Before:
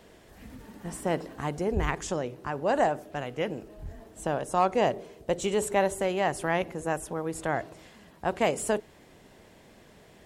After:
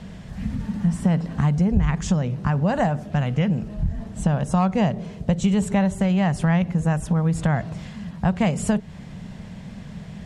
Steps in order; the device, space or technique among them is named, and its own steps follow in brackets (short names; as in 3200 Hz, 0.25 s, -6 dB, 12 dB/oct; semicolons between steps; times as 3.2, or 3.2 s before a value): jukebox (LPF 7300 Hz 12 dB/oct; resonant low shelf 250 Hz +10 dB, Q 3; compressor 3:1, threshold -28 dBFS, peak gain reduction 12.5 dB); gain +9 dB